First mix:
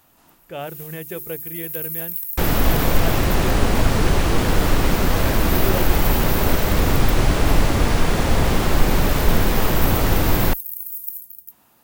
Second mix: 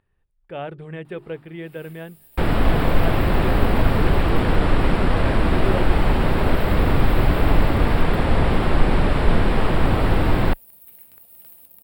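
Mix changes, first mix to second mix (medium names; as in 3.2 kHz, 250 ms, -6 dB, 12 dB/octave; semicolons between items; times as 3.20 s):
first sound: entry +1.05 s; master: add boxcar filter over 7 samples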